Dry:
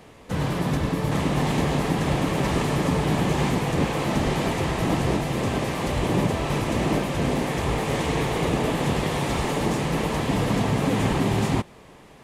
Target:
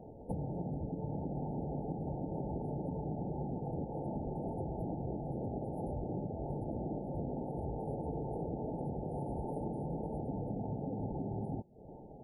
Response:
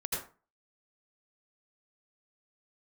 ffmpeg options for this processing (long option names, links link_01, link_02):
-af "afftfilt=real='re*(1-between(b*sr/4096,910,9100))':imag='im*(1-between(b*sr/4096,910,9100))':win_size=4096:overlap=0.75,acompressor=threshold=-34dB:ratio=12,afftdn=noise_reduction=36:noise_floor=-51,volume=-1dB"